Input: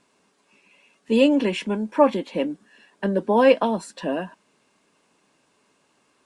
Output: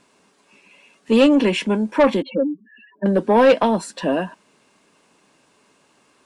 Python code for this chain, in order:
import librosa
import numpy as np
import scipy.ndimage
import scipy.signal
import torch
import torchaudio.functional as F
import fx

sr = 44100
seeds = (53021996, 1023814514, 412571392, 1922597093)

y = fx.spec_expand(x, sr, power=3.9, at=(2.22, 3.06))
y = 10.0 ** (-13.0 / 20.0) * np.tanh(y / 10.0 ** (-13.0 / 20.0))
y = F.gain(torch.from_numpy(y), 6.0).numpy()